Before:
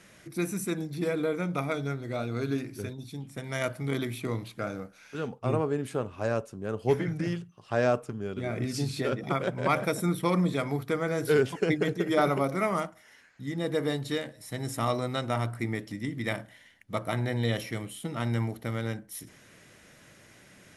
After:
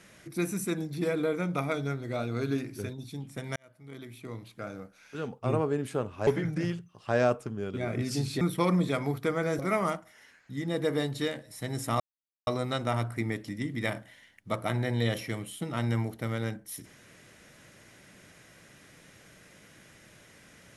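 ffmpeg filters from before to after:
-filter_complex "[0:a]asplit=6[s0][s1][s2][s3][s4][s5];[s0]atrim=end=3.56,asetpts=PTS-STARTPTS,afade=t=out:st=3.556:d=0.004:c=hsin[s6];[s1]atrim=start=3.56:end=6.272,asetpts=PTS-STARTPTS,afade=t=in:d=2.06[s7];[s2]atrim=start=6.898:end=9.042[s8];[s3]atrim=start=10.058:end=11.242[s9];[s4]atrim=start=12.488:end=14.9,asetpts=PTS-STARTPTS,afade=t=out:st=2.408:d=0.004:c=hsin,apad=pad_dur=0.47[s10];[s5]atrim=start=14.9,asetpts=PTS-STARTPTS,afade=t=in:d=0.004:c=hsin[s11];[s6][s7]concat=n=2:v=0:a=1[s12];[s12][s8]acrossfade=d=0.004:c1=hsin:c2=hsin[s13];[s13][s9]acrossfade=d=0.004:c1=hsin:c2=hsin[s14];[s10][s11]concat=n=2:v=0:a=1[s15];[s14][s15]acrossfade=d=0.004:c1=hsin:c2=hsin"

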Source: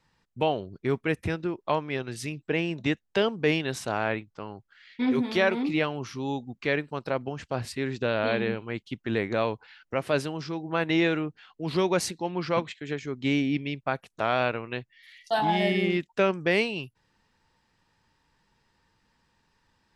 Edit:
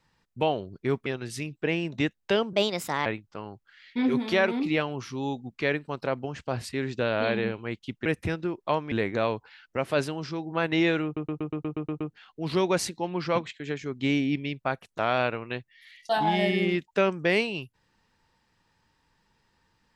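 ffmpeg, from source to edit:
-filter_complex "[0:a]asplit=14[s0][s1][s2][s3][s4][s5][s6][s7][s8][s9][s10][s11][s12][s13];[s0]atrim=end=1.062[s14];[s1]atrim=start=1.918:end=3.394[s15];[s2]atrim=start=3.39:end=4.09,asetpts=PTS-STARTPTS,asetrate=58653,aresample=44100[s16];[s3]atrim=start=4.086:end=9.092[s17];[s4]atrim=start=1.058:end=1.922[s18];[s5]atrim=start=9.088:end=11.342[s19];[s6]atrim=start=11.218:end=11.342[s20];[s7]atrim=start=11.218:end=11.342[s21];[s8]atrim=start=11.218:end=11.342[s22];[s9]atrim=start=11.218:end=11.342[s23];[s10]atrim=start=11.218:end=11.342[s24];[s11]atrim=start=11.218:end=11.342[s25];[s12]atrim=start=11.218:end=11.342[s26];[s13]atrim=start=11.218[s27];[s14][s15]acrossfade=d=0.004:c1=hsin:c2=hsin[s28];[s28][s16]acrossfade=d=0.004:c1=hsin:c2=hsin[s29];[s29][s17]acrossfade=d=0.004:c1=hsin:c2=hsin[s30];[s30][s18]acrossfade=d=0.004:c1=hsin:c2=hsin[s31];[s31][s19]acrossfade=d=0.004:c1=hsin:c2=hsin[s32];[s32][s20]acrossfade=d=0.004:c1=hsin:c2=hsin[s33];[s33][s21]acrossfade=d=0.004:c1=hsin:c2=hsin[s34];[s34][s22]acrossfade=d=0.004:c1=hsin:c2=hsin[s35];[s35][s23]acrossfade=d=0.004:c1=hsin:c2=hsin[s36];[s36][s24]acrossfade=d=0.004:c1=hsin:c2=hsin[s37];[s37][s25]acrossfade=d=0.004:c1=hsin:c2=hsin[s38];[s38][s26]acrossfade=d=0.004:c1=hsin:c2=hsin[s39];[s39][s27]acrossfade=d=0.004:c1=hsin:c2=hsin"

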